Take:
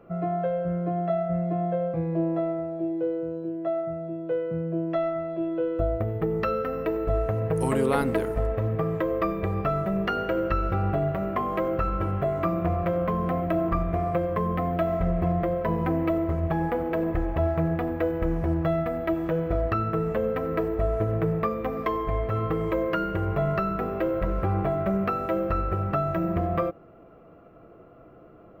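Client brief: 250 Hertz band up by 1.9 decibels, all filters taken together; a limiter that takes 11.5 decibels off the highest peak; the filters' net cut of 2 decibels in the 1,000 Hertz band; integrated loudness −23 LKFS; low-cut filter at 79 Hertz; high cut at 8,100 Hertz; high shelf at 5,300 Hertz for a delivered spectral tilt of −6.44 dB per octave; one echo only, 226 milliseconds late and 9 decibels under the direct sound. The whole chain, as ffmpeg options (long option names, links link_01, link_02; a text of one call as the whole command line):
ffmpeg -i in.wav -af "highpass=79,lowpass=8100,equalizer=frequency=250:width_type=o:gain=3.5,equalizer=frequency=1000:width_type=o:gain=-3.5,highshelf=frequency=5300:gain=4.5,alimiter=limit=-21.5dB:level=0:latency=1,aecho=1:1:226:0.355,volume=7dB" out.wav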